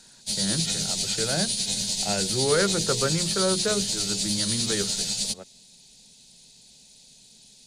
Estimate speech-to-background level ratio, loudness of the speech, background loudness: -4.5 dB, -29.5 LUFS, -25.0 LUFS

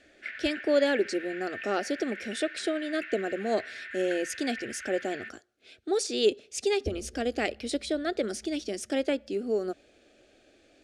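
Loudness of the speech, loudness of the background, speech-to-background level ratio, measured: -30.5 LUFS, -40.5 LUFS, 10.0 dB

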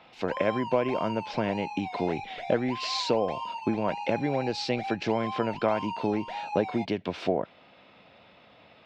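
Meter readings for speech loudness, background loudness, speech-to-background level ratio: -30.0 LUFS, -37.5 LUFS, 7.5 dB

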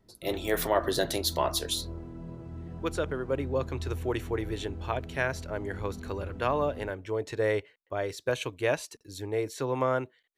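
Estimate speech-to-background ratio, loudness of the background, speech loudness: 10.0 dB, -41.5 LUFS, -31.5 LUFS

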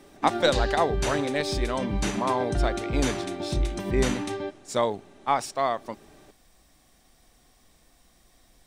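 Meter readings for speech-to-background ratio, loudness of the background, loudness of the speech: 1.5 dB, -30.0 LUFS, -28.5 LUFS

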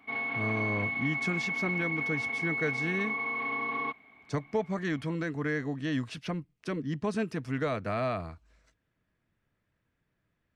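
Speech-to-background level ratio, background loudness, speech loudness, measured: -3.0 dB, -31.0 LUFS, -34.0 LUFS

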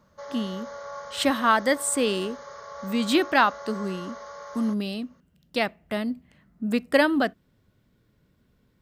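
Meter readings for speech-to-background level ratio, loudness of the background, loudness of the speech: 14.5 dB, -40.0 LUFS, -25.5 LUFS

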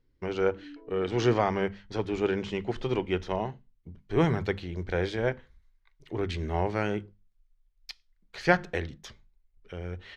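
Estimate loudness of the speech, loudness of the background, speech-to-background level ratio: -30.0 LUFS, -49.0 LUFS, 19.0 dB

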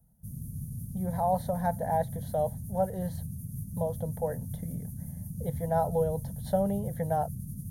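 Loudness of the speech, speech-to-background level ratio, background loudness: -32.0 LUFS, 7.0 dB, -39.0 LUFS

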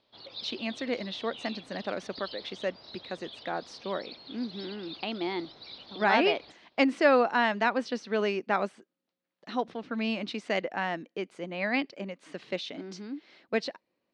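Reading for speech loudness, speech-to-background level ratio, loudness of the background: -31.0 LUFS, 14.0 dB, -45.0 LUFS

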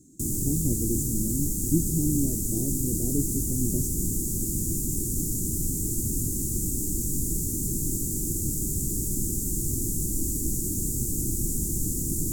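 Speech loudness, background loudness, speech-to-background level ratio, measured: -30.5 LUFS, -27.5 LUFS, -3.0 dB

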